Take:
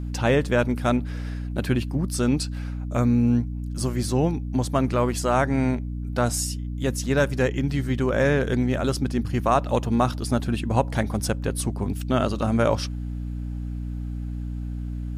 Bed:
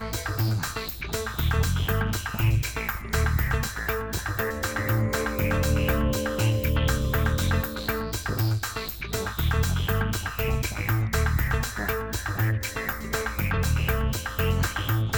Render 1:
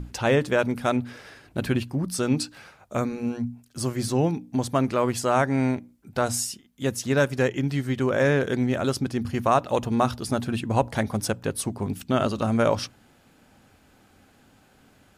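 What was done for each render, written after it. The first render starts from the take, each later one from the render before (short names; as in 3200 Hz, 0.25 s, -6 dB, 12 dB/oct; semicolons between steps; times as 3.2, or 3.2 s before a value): notches 60/120/180/240/300 Hz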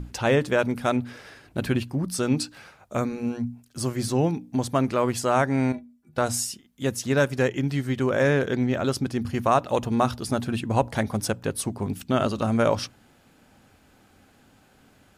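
5.72–6.18 metallic resonator 72 Hz, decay 0.3 s, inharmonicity 0.03; 8.45–8.92 bell 9800 Hz -12 dB 0.53 oct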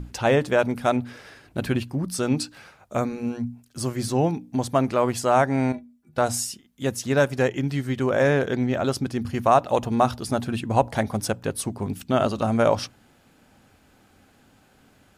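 dynamic EQ 730 Hz, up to +5 dB, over -34 dBFS, Q 2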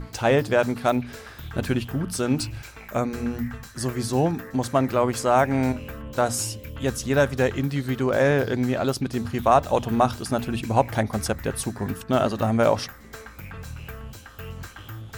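add bed -13 dB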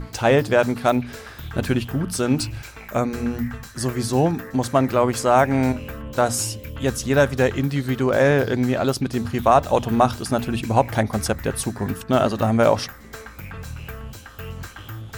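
gain +3 dB; limiter -3 dBFS, peak gain reduction 1.5 dB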